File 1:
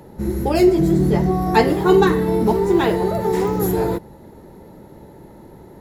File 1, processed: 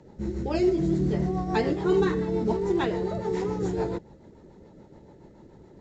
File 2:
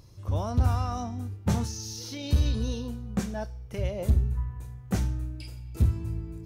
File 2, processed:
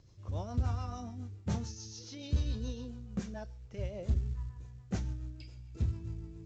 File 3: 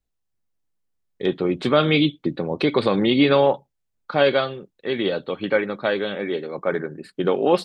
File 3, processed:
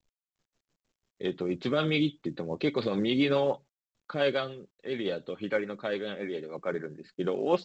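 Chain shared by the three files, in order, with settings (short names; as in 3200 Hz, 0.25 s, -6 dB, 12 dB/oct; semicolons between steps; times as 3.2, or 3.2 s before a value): rotary speaker horn 7 Hz; gain -7 dB; µ-law 128 kbps 16000 Hz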